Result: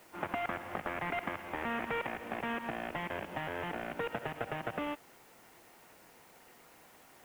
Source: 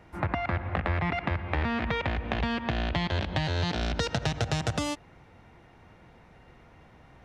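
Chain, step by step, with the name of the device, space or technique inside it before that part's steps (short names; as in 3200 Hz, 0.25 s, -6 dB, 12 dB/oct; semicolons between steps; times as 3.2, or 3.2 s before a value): army field radio (BPF 300–3200 Hz; CVSD 16 kbps; white noise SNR 24 dB); gain -3 dB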